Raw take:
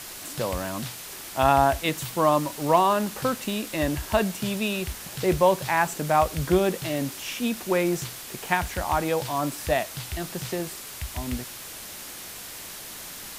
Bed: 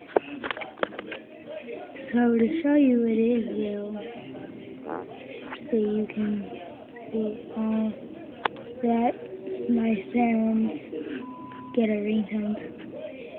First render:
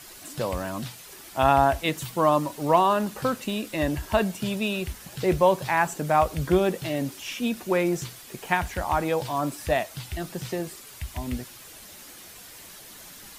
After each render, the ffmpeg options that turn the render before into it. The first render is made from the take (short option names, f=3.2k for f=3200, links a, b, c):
-af "afftdn=nr=8:nf=-40"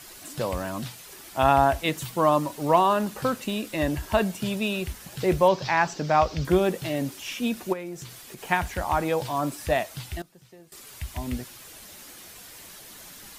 -filter_complex "[0:a]asettb=1/sr,asplit=3[a][b][c];[a]atrim=end=5.484[d];[b]atrim=start=5.48:end=6.45,asetpts=PTS-STARTPTS,afade=t=in:d=0.004:c=qsin,afade=t=out:st=0.966:d=0.004:c=qsin,highshelf=f=7.4k:t=q:w=3:g=-13.5[e];[c]atrim=start=6.446[f];[d][e]acrossfade=d=0.004:c1=hsin:c2=qsin[g];[g][f]acrossfade=d=0.004:c1=qsin:c2=hsin,asplit=3[h][i][j];[h]afade=t=out:st=7.72:d=0.02[k];[i]acompressor=threshold=-38dB:ratio=2.5:attack=3.2:release=140:knee=1:detection=peak,afade=t=in:st=7.72:d=0.02,afade=t=out:st=8.4:d=0.02[l];[j]afade=t=in:st=8.4:d=0.02[m];[k][l][m]amix=inputs=3:normalize=0,asplit=3[n][o][p];[n]atrim=end=10.22,asetpts=PTS-STARTPTS,afade=t=out:st=9.91:d=0.31:c=log:silence=0.1[q];[o]atrim=start=10.22:end=10.72,asetpts=PTS-STARTPTS,volume=-20dB[r];[p]atrim=start=10.72,asetpts=PTS-STARTPTS,afade=t=in:d=0.31:c=log:silence=0.1[s];[q][r][s]concat=n=3:v=0:a=1"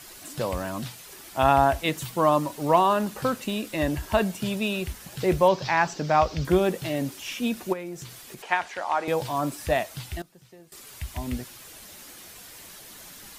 -filter_complex "[0:a]asettb=1/sr,asplit=3[a][b][c];[a]atrim=end=8.424[d];[b]atrim=start=8.42:end=9.08,asetpts=PTS-STARTPTS,afade=t=in:d=0.004:c=qsin,afade=t=out:st=0.656:d=0.004:c=qsin,highpass=470,lowpass=5.6k[e];[c]atrim=start=9.076[f];[d][e]acrossfade=d=0.004:c1=hsin:c2=qsin[g];[g][f]acrossfade=d=0.004:c1=qsin:c2=hsin"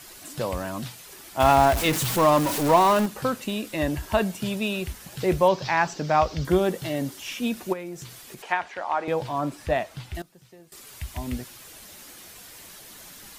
-filter_complex "[0:a]asettb=1/sr,asplit=3[a][b][c];[a]atrim=end=1.404[d];[b]atrim=start=1.4:end=3.06,asetpts=PTS-STARTPTS,afade=t=in:d=0.004:c=qsin,afade=t=out:st=1.656:d=0.004:c=qsin,aeval=exprs='val(0)+0.5*0.0708*sgn(val(0))':c=same[e];[c]atrim=start=3.056[f];[d][e]acrossfade=d=0.004:c1=hsin:c2=qsin[g];[g][f]acrossfade=d=0.004:c1=qsin:c2=hsin,asettb=1/sr,asplit=3[h][i][j];[h]atrim=end=6.334[k];[i]atrim=start=6.33:end=7.2,asetpts=PTS-STARTPTS,afade=t=in:d=0.004:c=qsin,afade=t=out:st=0.866:d=0.004:c=qsin,bandreject=f=2.5k:w=12[l];[j]atrim=start=7.196[m];[k][l]acrossfade=d=0.004:c1=hsin:c2=qsin[n];[n][m]acrossfade=d=0.004:c1=qsin:c2=hsin,asettb=1/sr,asplit=3[o][p][q];[o]atrim=end=8.524[r];[p]atrim=start=8.52:end=10.15,asetpts=PTS-STARTPTS,afade=t=in:d=0.004:c=qsin,afade=t=out:st=1.626:d=0.004:c=qsin,lowpass=f=2.9k:p=1[s];[q]atrim=start=10.146[t];[r][s]acrossfade=d=0.004:c1=hsin:c2=qsin[u];[u][t]acrossfade=d=0.004:c1=qsin:c2=hsin"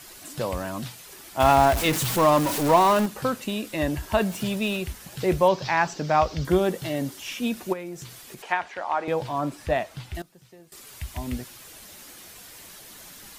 -filter_complex "[0:a]asettb=1/sr,asplit=3[a][b][c];[a]atrim=end=4.204[d];[b]atrim=start=4.2:end=4.77,asetpts=PTS-STARTPTS,afade=t=in:d=0.004:c=qsin,afade=t=out:st=0.566:d=0.004:c=qsin,aeval=exprs='val(0)+0.5*0.0126*sgn(val(0))':c=same[e];[c]atrim=start=4.766[f];[d][e]acrossfade=d=0.004:c1=hsin:c2=qsin[g];[g][f]acrossfade=d=0.004:c1=qsin:c2=hsin"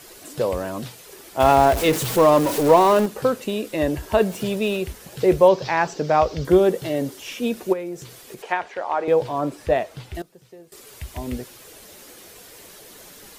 -af "equalizer=f=450:t=o:w=0.84:g=10"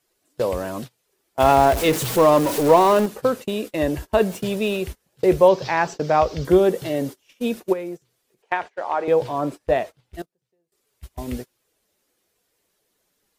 -af "agate=range=-27dB:threshold=-30dB:ratio=16:detection=peak"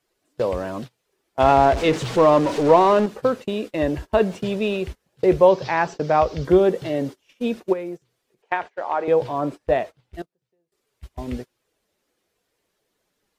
-filter_complex "[0:a]acrossover=split=7900[a][b];[b]acompressor=threshold=-52dB:ratio=4:attack=1:release=60[c];[a][c]amix=inputs=2:normalize=0,highshelf=f=6.6k:g=-10"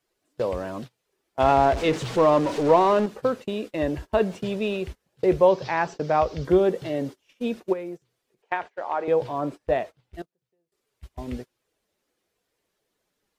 -af "volume=-3.5dB"